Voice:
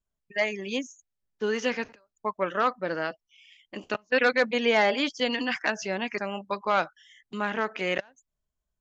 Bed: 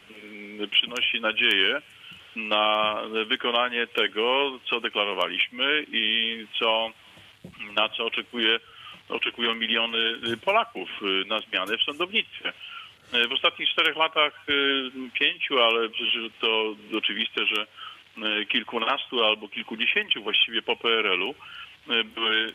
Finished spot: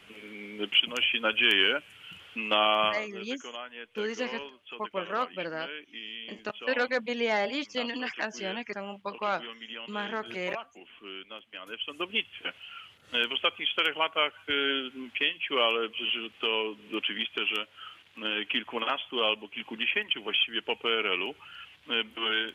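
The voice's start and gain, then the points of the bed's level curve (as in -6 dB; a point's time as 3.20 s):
2.55 s, -5.5 dB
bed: 2.89 s -2 dB
3.09 s -17 dB
11.57 s -17 dB
12.08 s -5 dB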